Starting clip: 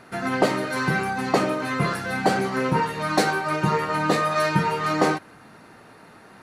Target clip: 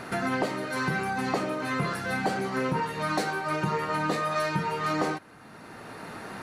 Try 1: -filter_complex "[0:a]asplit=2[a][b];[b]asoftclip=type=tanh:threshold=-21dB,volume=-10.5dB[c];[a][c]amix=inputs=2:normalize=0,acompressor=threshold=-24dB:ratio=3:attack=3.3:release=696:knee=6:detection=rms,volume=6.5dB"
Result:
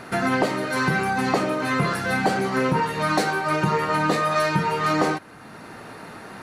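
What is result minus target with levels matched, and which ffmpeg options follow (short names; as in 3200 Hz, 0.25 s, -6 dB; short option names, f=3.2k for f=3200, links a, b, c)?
compressor: peak gain reduction -6.5 dB
-filter_complex "[0:a]asplit=2[a][b];[b]asoftclip=type=tanh:threshold=-21dB,volume=-10.5dB[c];[a][c]amix=inputs=2:normalize=0,acompressor=threshold=-33.5dB:ratio=3:attack=3.3:release=696:knee=6:detection=rms,volume=6.5dB"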